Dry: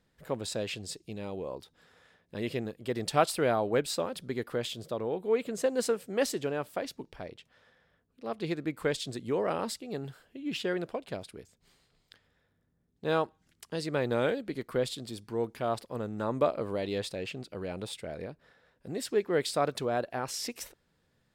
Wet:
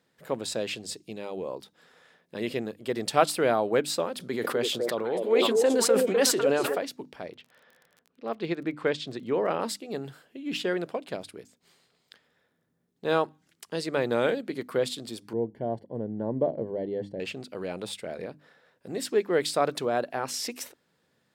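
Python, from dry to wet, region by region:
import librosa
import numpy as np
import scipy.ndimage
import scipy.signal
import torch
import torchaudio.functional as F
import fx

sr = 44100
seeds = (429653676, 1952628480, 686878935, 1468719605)

y = fx.chain(x, sr, fx.low_shelf(hz=170.0, db=-4.5),
    fx.echo_stepped(ms=252, hz=440.0, octaves=1.4, feedback_pct=70, wet_db=-0.5),
    fx.sustainer(db_per_s=37.0), at=(4.14, 6.78))
y = fx.lowpass(y, sr, hz=4000.0, slope=12, at=(7.32, 9.6), fade=0.02)
y = fx.dmg_crackle(y, sr, seeds[0], per_s=28.0, level_db=-46.0, at=(7.32, 9.6), fade=0.02)
y = fx.chain(y, sr, fx.moving_average(points=35),
    fx.low_shelf(hz=120.0, db=10.5), at=(15.33, 17.2))
y = scipy.signal.sosfilt(scipy.signal.butter(2, 160.0, 'highpass', fs=sr, output='sos'), y)
y = fx.hum_notches(y, sr, base_hz=50, count=6)
y = F.gain(torch.from_numpy(y), 3.5).numpy()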